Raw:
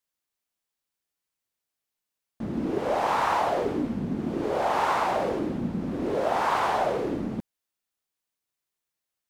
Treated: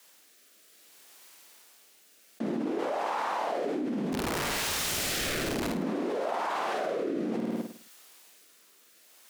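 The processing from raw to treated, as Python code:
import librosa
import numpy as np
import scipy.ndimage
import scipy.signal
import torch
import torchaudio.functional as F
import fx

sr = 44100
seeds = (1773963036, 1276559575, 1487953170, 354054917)

y = scipy.signal.sosfilt(scipy.signal.bessel(8, 310.0, 'highpass', norm='mag', fs=sr, output='sos'), x)
y = fx.overflow_wrap(y, sr, gain_db=29.0, at=(4.12, 5.68), fade=0.02)
y = fx.rotary(y, sr, hz=0.6)
y = fx.room_flutter(y, sr, wall_m=9.0, rt60_s=0.48)
y = fx.env_flatten(y, sr, amount_pct=100)
y = y * 10.0 ** (-8.0 / 20.0)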